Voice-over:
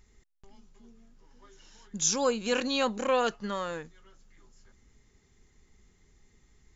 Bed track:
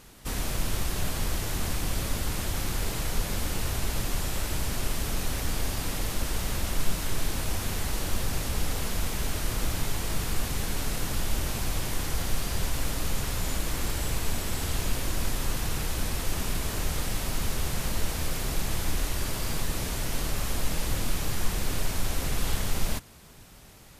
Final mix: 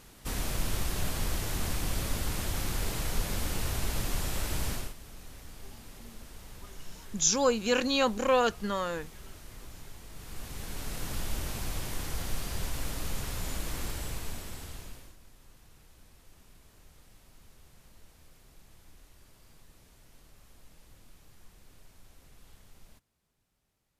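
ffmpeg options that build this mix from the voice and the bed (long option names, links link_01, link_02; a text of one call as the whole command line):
ffmpeg -i stem1.wav -i stem2.wav -filter_complex "[0:a]adelay=5200,volume=1.5dB[link_01];[1:a]volume=10.5dB,afade=type=out:start_time=4.7:duration=0.24:silence=0.158489,afade=type=in:start_time=10.12:duration=1.02:silence=0.223872,afade=type=out:start_time=13.79:duration=1.38:silence=0.0749894[link_02];[link_01][link_02]amix=inputs=2:normalize=0" out.wav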